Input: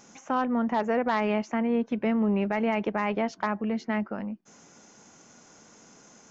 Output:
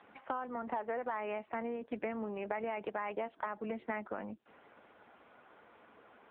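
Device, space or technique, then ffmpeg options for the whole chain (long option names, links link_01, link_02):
voicemail: -filter_complex "[0:a]asplit=3[link_01][link_02][link_03];[link_01]afade=type=out:start_time=1.8:duration=0.02[link_04];[link_02]highpass=73,afade=type=in:start_time=1.8:duration=0.02,afade=type=out:start_time=2.62:duration=0.02[link_05];[link_03]afade=type=in:start_time=2.62:duration=0.02[link_06];[link_04][link_05][link_06]amix=inputs=3:normalize=0,highpass=400,lowpass=2700,acompressor=threshold=-34dB:ratio=10,volume=1.5dB" -ar 8000 -c:a libopencore_amrnb -b:a 6700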